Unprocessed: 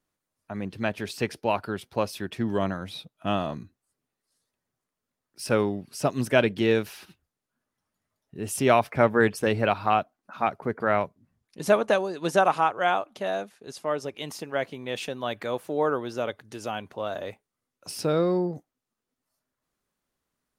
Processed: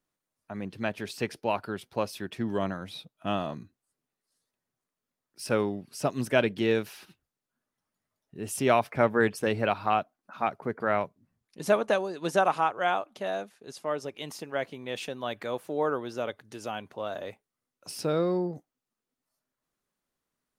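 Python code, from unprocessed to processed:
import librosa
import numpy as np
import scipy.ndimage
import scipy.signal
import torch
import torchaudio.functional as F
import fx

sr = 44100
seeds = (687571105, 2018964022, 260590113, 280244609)

y = fx.peak_eq(x, sr, hz=69.0, db=-7.0, octaves=0.77)
y = y * librosa.db_to_amplitude(-3.0)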